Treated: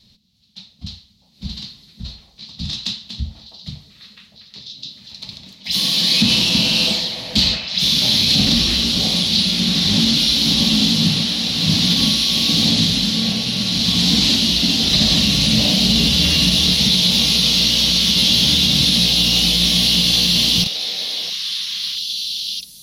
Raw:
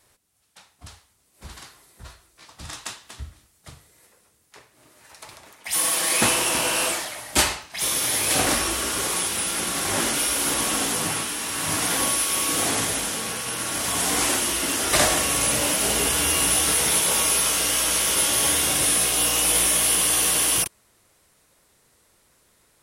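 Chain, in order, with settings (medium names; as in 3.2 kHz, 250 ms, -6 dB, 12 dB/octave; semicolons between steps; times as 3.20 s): FFT filter 110 Hz 0 dB, 210 Hz +11 dB, 330 Hz -12 dB, 1.5 kHz -22 dB, 2.3 kHz -11 dB, 4.1 kHz +9 dB, 9 kHz -26 dB, 14 kHz -16 dB; repeats whose band climbs or falls 656 ms, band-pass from 630 Hz, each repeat 1.4 oct, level -1.5 dB; loudness maximiser +14.5 dB; trim -3.5 dB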